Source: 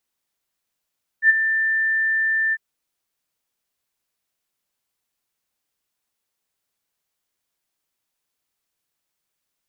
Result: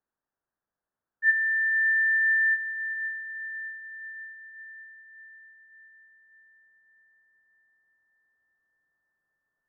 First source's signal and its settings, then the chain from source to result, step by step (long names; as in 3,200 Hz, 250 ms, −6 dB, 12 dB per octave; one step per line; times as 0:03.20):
note with an ADSR envelope sine 1,780 Hz, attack 74 ms, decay 23 ms, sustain −9.5 dB, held 1.31 s, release 41 ms −8 dBFS
speech leveller
elliptic low-pass filter 1,700 Hz
on a send: feedback delay with all-pass diffusion 490 ms, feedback 60%, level −11.5 dB